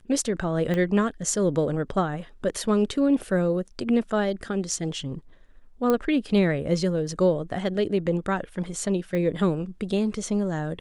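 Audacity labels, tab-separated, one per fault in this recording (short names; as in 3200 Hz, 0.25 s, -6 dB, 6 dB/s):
0.740000	0.740000	pop -16 dBFS
5.900000	5.900000	pop -11 dBFS
9.150000	9.150000	pop -18 dBFS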